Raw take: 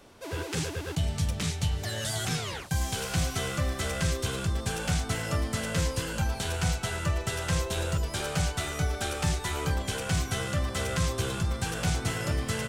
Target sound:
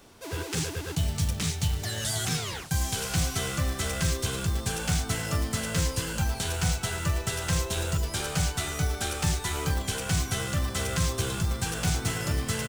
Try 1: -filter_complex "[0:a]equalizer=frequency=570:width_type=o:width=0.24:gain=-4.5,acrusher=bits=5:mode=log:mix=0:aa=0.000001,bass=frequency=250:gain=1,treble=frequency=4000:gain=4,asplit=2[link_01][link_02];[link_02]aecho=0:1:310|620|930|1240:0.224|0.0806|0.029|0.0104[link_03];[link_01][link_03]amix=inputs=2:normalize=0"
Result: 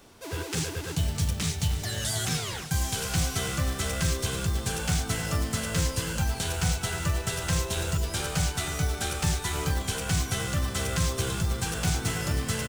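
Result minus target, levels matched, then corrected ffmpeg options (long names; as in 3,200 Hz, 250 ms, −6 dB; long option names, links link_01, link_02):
echo-to-direct +10 dB
-filter_complex "[0:a]equalizer=frequency=570:width_type=o:width=0.24:gain=-4.5,acrusher=bits=5:mode=log:mix=0:aa=0.000001,bass=frequency=250:gain=1,treble=frequency=4000:gain=4,asplit=2[link_01][link_02];[link_02]aecho=0:1:310|620:0.0708|0.0255[link_03];[link_01][link_03]amix=inputs=2:normalize=0"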